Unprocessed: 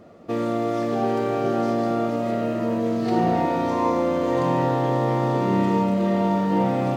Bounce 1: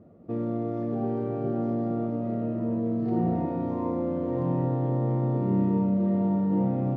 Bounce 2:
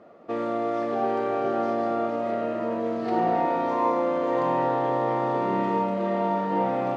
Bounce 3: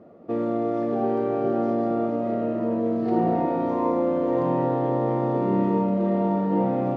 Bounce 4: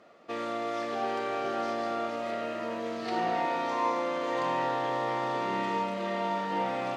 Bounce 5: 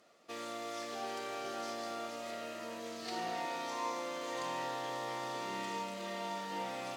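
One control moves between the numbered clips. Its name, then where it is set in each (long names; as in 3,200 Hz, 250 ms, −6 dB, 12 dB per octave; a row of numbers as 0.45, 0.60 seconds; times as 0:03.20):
resonant band-pass, frequency: 110, 940, 360, 2,500, 7,400 Hertz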